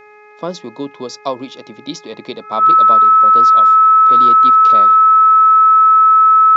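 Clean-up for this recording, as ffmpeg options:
ffmpeg -i in.wav -af "bandreject=frequency=420:width_type=h:width=4,bandreject=frequency=840:width_type=h:width=4,bandreject=frequency=1260:width_type=h:width=4,bandreject=frequency=1680:width_type=h:width=4,bandreject=frequency=2100:width_type=h:width=4,bandreject=frequency=2520:width_type=h:width=4,bandreject=frequency=1300:width=30" out.wav

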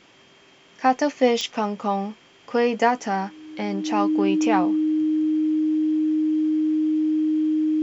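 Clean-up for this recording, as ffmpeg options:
ffmpeg -i in.wav -af "adeclick=threshold=4,bandreject=frequency=310:width=30" out.wav

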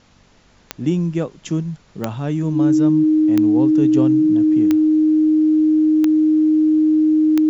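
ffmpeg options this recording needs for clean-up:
ffmpeg -i in.wav -af "adeclick=threshold=4,bandreject=frequency=47.8:width_type=h:width=4,bandreject=frequency=95.6:width_type=h:width=4,bandreject=frequency=143.4:width_type=h:width=4,bandreject=frequency=191.2:width_type=h:width=4,bandreject=frequency=239:width_type=h:width=4,bandreject=frequency=310:width=30,agate=range=-21dB:threshold=-43dB" out.wav

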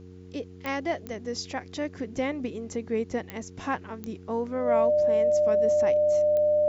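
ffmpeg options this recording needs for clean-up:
ffmpeg -i in.wav -af "adeclick=threshold=4,bandreject=frequency=91.5:width_type=h:width=4,bandreject=frequency=183:width_type=h:width=4,bandreject=frequency=274.5:width_type=h:width=4,bandreject=frequency=366:width_type=h:width=4,bandreject=frequency=457.5:width_type=h:width=4,bandreject=frequency=600:width=30,agate=range=-21dB:threshold=-38dB" out.wav

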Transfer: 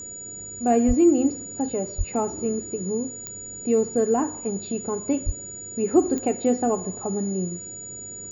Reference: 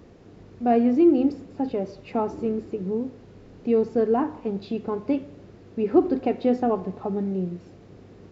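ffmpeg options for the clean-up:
ffmpeg -i in.wav -filter_complex "[0:a]adeclick=threshold=4,bandreject=frequency=6900:width=30,asplit=3[link_01][link_02][link_03];[link_01]afade=type=out:start_time=0.87:duration=0.02[link_04];[link_02]highpass=frequency=140:width=0.5412,highpass=frequency=140:width=1.3066,afade=type=in:start_time=0.87:duration=0.02,afade=type=out:start_time=0.99:duration=0.02[link_05];[link_03]afade=type=in:start_time=0.99:duration=0.02[link_06];[link_04][link_05][link_06]amix=inputs=3:normalize=0,asplit=3[link_07][link_08][link_09];[link_07]afade=type=out:start_time=1.97:duration=0.02[link_10];[link_08]highpass=frequency=140:width=0.5412,highpass=frequency=140:width=1.3066,afade=type=in:start_time=1.97:duration=0.02,afade=type=out:start_time=2.09:duration=0.02[link_11];[link_09]afade=type=in:start_time=2.09:duration=0.02[link_12];[link_10][link_11][link_12]amix=inputs=3:normalize=0,asplit=3[link_13][link_14][link_15];[link_13]afade=type=out:start_time=5.25:duration=0.02[link_16];[link_14]highpass=frequency=140:width=0.5412,highpass=frequency=140:width=1.3066,afade=type=in:start_time=5.25:duration=0.02,afade=type=out:start_time=5.37:duration=0.02[link_17];[link_15]afade=type=in:start_time=5.37:duration=0.02[link_18];[link_16][link_17][link_18]amix=inputs=3:normalize=0" out.wav

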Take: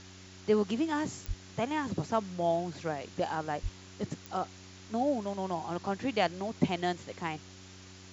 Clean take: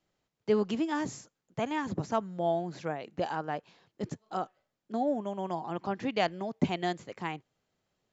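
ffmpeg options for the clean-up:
ffmpeg -i in.wav -filter_complex "[0:a]adeclick=threshold=4,bandreject=frequency=93.5:width_type=h:width=4,bandreject=frequency=187:width_type=h:width=4,bandreject=frequency=280.5:width_type=h:width=4,bandreject=frequency=374:width_type=h:width=4,asplit=3[link_01][link_02][link_03];[link_01]afade=type=out:start_time=1.27:duration=0.02[link_04];[link_02]highpass=frequency=140:width=0.5412,highpass=frequency=140:width=1.3066,afade=type=in:start_time=1.27:duration=0.02,afade=type=out:start_time=1.39:duration=0.02[link_05];[link_03]afade=type=in:start_time=1.39:duration=0.02[link_06];[link_04][link_05][link_06]amix=inputs=3:normalize=0,asplit=3[link_07][link_08][link_09];[link_07]afade=type=out:start_time=3.62:duration=0.02[link_10];[link_08]highpass=frequency=140:width=0.5412,highpass=frequency=140:width=1.3066,afade=type=in:start_time=3.62:duration=0.02,afade=type=out:start_time=3.74:duration=0.02[link_11];[link_09]afade=type=in:start_time=3.74:duration=0.02[link_12];[link_10][link_11][link_12]amix=inputs=3:normalize=0,afftdn=noise_reduction=30:noise_floor=-51" out.wav

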